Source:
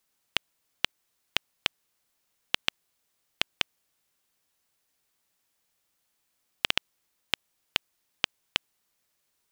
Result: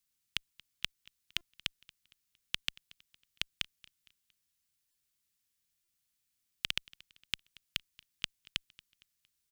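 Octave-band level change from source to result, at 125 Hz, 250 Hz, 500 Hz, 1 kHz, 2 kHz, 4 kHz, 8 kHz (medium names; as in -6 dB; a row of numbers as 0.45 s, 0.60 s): -4.5 dB, -10.0 dB, -18.0 dB, -15.5 dB, -8.5 dB, -7.0 dB, -5.0 dB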